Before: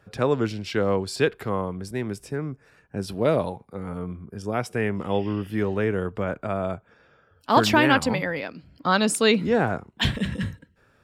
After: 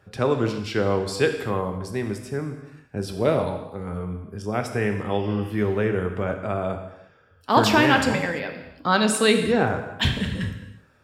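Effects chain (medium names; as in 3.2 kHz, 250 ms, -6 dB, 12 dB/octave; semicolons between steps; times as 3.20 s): gated-style reverb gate 370 ms falling, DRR 5 dB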